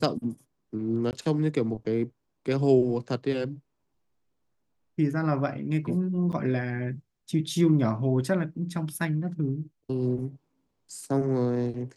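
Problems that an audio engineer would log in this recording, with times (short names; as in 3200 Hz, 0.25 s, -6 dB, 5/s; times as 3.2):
1.11–1.13 gap 19 ms
6.32–6.33 gap 8.3 ms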